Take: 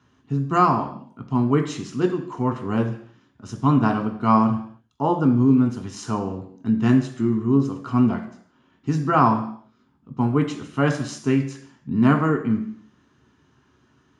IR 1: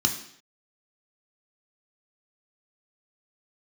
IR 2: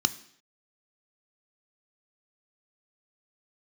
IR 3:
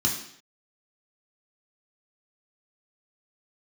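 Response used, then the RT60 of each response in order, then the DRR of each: 1; 0.65, 0.65, 0.65 seconds; 3.0, 12.0, −2.0 decibels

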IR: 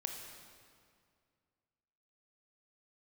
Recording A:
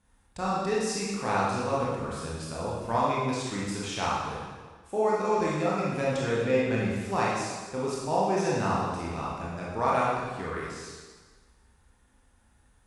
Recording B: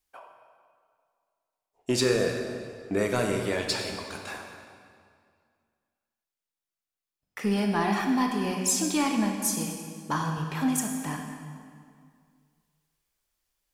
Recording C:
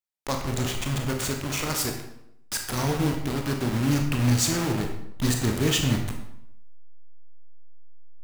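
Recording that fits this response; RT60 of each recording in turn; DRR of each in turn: B; 1.4, 2.2, 0.75 seconds; −6.5, 2.5, 3.0 decibels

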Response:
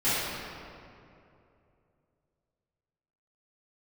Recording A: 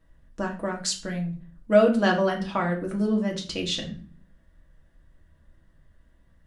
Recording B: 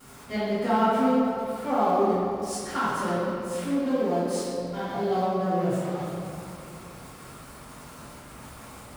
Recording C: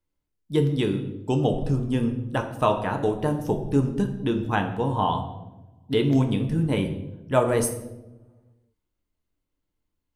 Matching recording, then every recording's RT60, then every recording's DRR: B; 0.45, 2.7, 1.1 seconds; 0.0, −16.0, 4.0 decibels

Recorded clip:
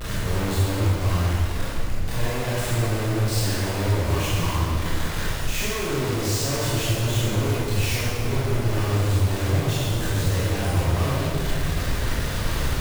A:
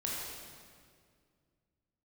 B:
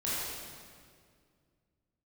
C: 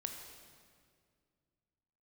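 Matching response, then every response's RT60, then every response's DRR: B; 2.1, 2.1, 2.1 seconds; −5.0, −9.5, 3.5 decibels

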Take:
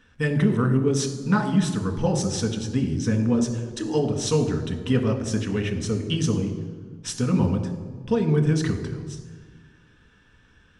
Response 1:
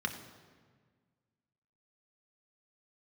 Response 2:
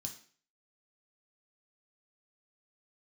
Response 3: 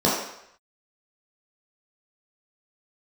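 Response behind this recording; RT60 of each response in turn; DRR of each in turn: 1; 1.6, 0.45, 0.75 seconds; 3.5, 1.5, −6.5 decibels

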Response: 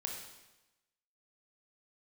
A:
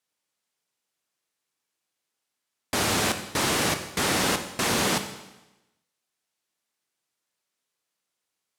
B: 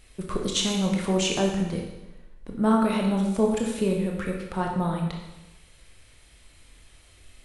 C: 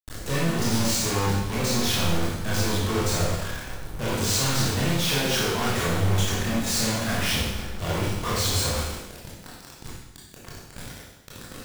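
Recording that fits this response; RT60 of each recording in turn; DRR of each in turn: B; 1.0, 1.0, 1.0 seconds; 7.0, 0.5, −7.0 decibels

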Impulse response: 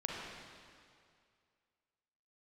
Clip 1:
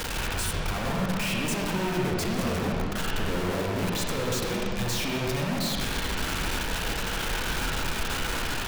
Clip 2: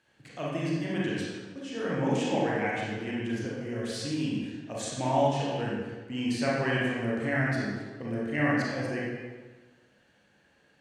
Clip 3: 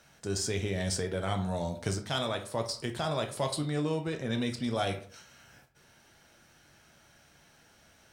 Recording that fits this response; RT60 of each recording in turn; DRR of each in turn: 1; 2.2, 1.3, 0.55 seconds; −3.0, −6.0, 4.5 decibels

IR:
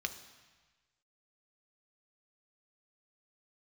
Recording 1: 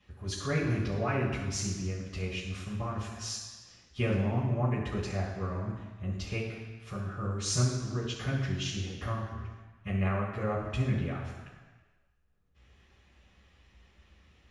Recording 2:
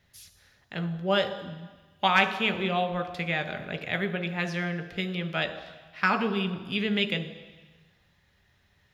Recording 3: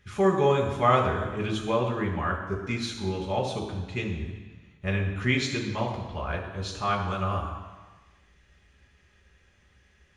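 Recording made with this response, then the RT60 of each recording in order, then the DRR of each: 2; 1.3, 1.3, 1.3 seconds; −10.0, 7.0, −1.5 decibels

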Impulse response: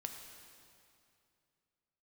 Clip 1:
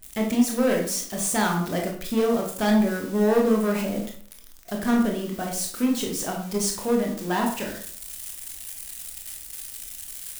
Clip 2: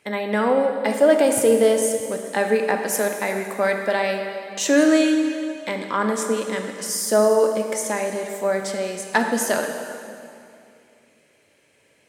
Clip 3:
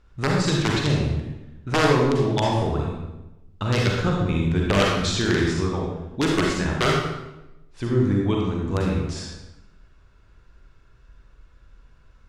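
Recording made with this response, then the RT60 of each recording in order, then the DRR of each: 2; 0.55, 2.5, 0.95 seconds; 0.5, 3.5, −2.0 decibels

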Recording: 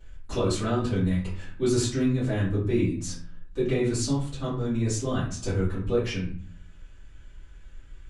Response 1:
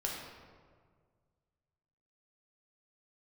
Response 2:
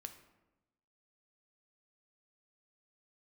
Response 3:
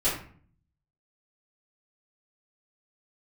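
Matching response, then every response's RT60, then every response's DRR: 3; 1.8, 1.0, 0.50 seconds; −3.0, 7.0, −13.0 decibels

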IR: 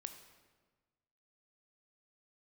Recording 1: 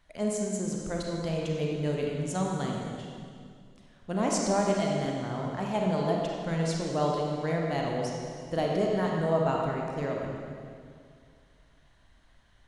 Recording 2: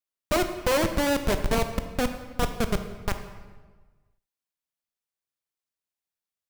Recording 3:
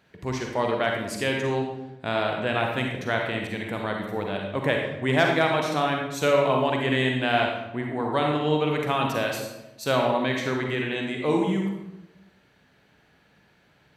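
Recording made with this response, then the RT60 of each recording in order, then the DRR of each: 2; 2.2, 1.4, 0.95 seconds; −1.5, 7.5, 0.5 decibels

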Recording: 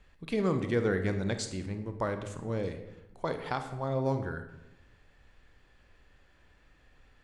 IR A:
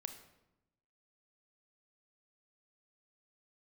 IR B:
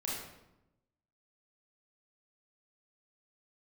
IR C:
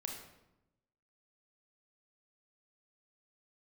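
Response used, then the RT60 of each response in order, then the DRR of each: A; 0.90, 0.90, 0.90 seconds; 7.0, −5.5, 1.0 decibels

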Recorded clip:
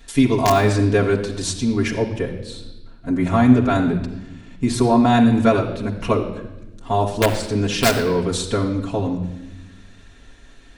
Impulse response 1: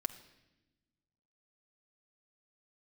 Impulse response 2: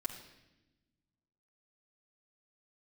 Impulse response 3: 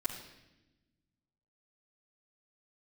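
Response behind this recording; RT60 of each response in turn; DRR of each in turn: 2; 1.0, 1.0, 1.0 seconds; 5.0, −3.5, −9.0 decibels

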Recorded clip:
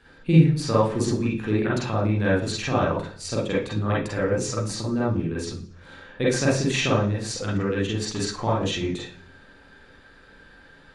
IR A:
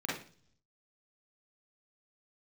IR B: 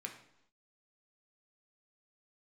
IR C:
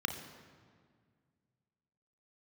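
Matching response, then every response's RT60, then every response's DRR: A; 0.45, 0.80, 1.9 seconds; −6.5, 2.0, 5.0 decibels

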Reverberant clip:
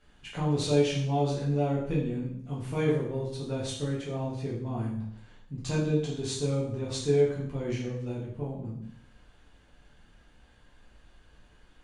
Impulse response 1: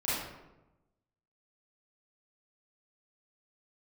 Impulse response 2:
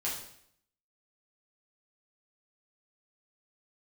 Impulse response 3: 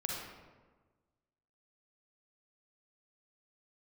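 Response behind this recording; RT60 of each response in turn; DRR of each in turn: 2; 1.0, 0.70, 1.4 seconds; −11.5, −6.5, −2.0 decibels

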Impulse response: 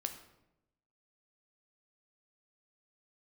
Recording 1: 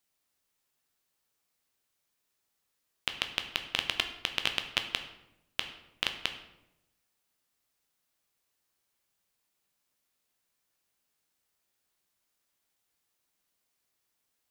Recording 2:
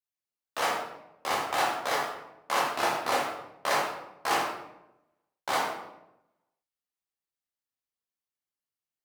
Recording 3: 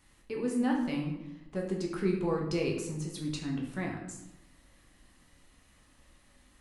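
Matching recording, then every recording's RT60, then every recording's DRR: 1; 0.90, 0.90, 0.90 seconds; 6.0, −5.0, −1.0 decibels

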